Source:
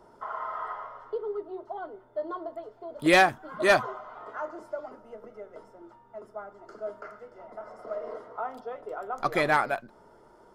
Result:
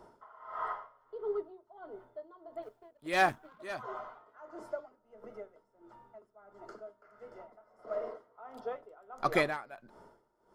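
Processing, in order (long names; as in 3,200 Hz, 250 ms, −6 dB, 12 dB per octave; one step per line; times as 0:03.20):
0:02.62–0:03.67: mu-law and A-law mismatch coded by A
tremolo with a sine in dB 1.5 Hz, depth 21 dB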